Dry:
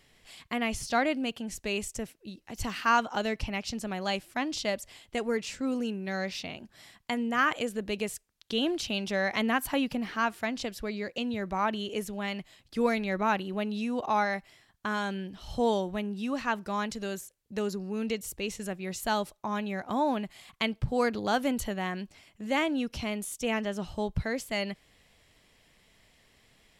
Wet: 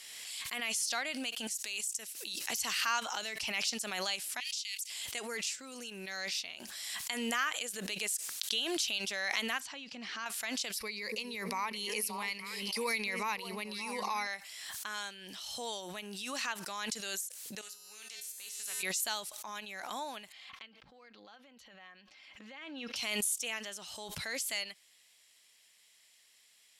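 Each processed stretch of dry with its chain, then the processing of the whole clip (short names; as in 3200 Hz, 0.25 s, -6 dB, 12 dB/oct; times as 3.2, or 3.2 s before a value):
1.47–2.39 compressor 10:1, threshold -45 dBFS + high shelf 2600 Hz +9 dB
4.4–4.9 Chebyshev high-pass 2300 Hz, order 4 + compressor 2:1, threshold -40 dBFS
9.6–10.26 LPF 6400 Hz 24 dB/oct + bell 210 Hz +6 dB 1.8 oct + compressor 1.5:1, threshold -43 dBFS
10.77–14.27 ripple EQ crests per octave 0.88, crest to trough 12 dB + delay with a stepping band-pass 0.287 s, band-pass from 290 Hz, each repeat 1.4 oct, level -7.5 dB
17.61–18.83 resonator 140 Hz, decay 0.7 s, harmonics odd, mix 90% + spectral compressor 2:1
20.32–22.96 air absorption 270 m + comb 3.8 ms, depth 39% + compressor 12:1, threshold -39 dBFS
whole clip: LPF 11000 Hz 12 dB/oct; differentiator; backwards sustainer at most 25 dB/s; gain +6 dB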